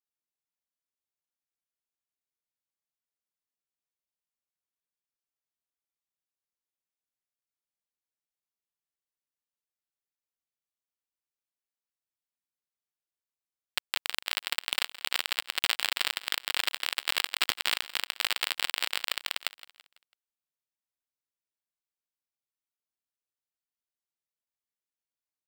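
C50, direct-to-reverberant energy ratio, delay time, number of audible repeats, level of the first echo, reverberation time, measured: no reverb audible, no reverb audible, 166 ms, 3, −17.5 dB, no reverb audible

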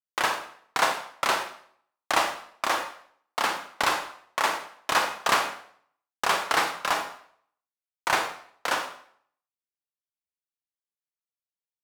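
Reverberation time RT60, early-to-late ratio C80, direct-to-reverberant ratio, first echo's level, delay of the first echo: 0.60 s, 11.0 dB, 5.5 dB, no echo audible, no echo audible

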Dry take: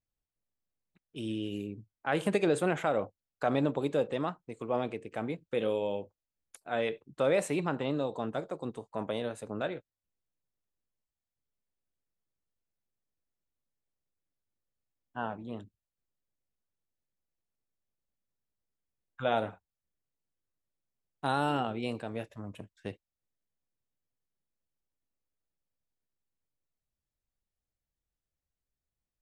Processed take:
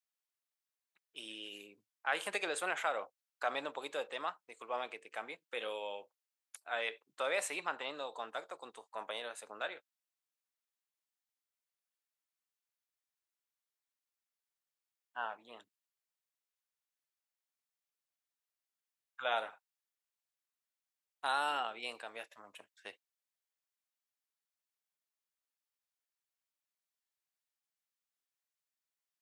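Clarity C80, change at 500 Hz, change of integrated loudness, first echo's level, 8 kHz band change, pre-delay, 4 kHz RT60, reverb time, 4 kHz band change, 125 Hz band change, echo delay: no reverb audible, −10.5 dB, −6.5 dB, no echo audible, +1.0 dB, no reverb audible, no reverb audible, no reverb audible, +1.0 dB, below −30 dB, no echo audible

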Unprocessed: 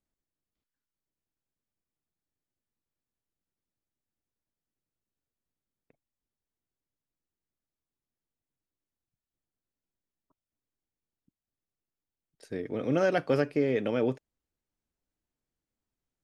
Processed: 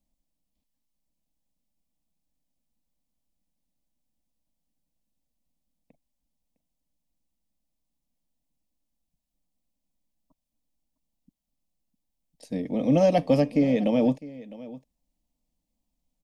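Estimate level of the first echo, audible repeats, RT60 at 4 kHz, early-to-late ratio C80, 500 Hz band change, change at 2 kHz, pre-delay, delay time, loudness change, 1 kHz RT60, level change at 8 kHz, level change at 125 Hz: −18.5 dB, 1, no reverb audible, no reverb audible, +4.0 dB, −4.5 dB, no reverb audible, 657 ms, +5.0 dB, no reverb audible, can't be measured, +6.5 dB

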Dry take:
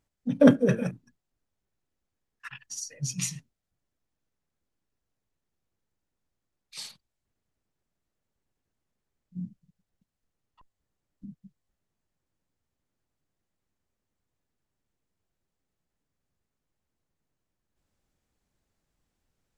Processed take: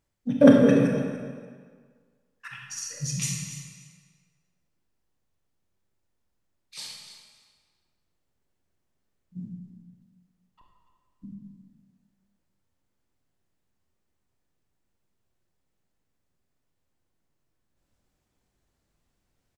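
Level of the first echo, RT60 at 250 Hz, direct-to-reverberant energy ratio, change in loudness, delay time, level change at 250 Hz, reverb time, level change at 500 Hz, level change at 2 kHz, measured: −15.5 dB, 1.6 s, −0.5 dB, +3.0 dB, 289 ms, +4.0 dB, 1.7 s, +4.0 dB, +2.5 dB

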